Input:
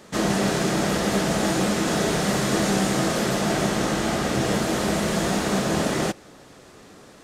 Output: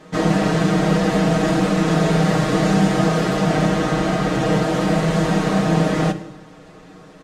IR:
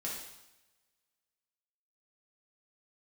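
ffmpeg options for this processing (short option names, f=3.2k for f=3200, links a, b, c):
-filter_complex "[0:a]lowpass=f=2.4k:p=1,aecho=1:1:6.4:0.92,asplit=2[a][b];[1:a]atrim=start_sample=2205,lowshelf=f=230:g=11[c];[b][c]afir=irnorm=-1:irlink=0,volume=-9.5dB[d];[a][d]amix=inputs=2:normalize=0"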